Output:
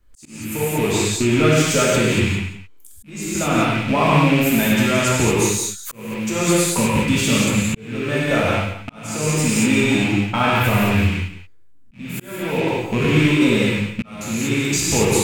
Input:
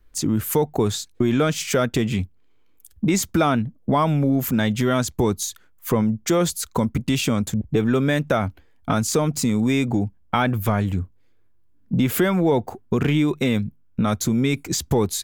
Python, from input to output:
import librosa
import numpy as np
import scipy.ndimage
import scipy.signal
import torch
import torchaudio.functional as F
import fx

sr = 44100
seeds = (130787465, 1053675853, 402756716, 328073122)

y = fx.rattle_buzz(x, sr, strikes_db=-29.0, level_db=-16.0)
y = y + 10.0 ** (-12.5 / 20.0) * np.pad(y, (int(176 * sr / 1000.0), 0))[:len(y)]
y = fx.rev_gated(y, sr, seeds[0], gate_ms=260, shape='flat', drr_db=-6.5)
y = fx.auto_swell(y, sr, attack_ms=752.0)
y = fx.peak_eq(y, sr, hz=8000.0, db=6.5, octaves=0.51)
y = F.gain(torch.from_numpy(y), -3.0).numpy()